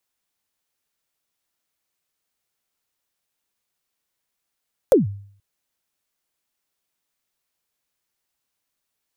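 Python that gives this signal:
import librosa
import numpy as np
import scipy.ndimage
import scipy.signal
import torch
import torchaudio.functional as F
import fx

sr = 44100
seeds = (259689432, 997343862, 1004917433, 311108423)

y = fx.drum_kick(sr, seeds[0], length_s=0.48, level_db=-7.0, start_hz=590.0, end_hz=100.0, sweep_ms=145.0, decay_s=0.56, click=True)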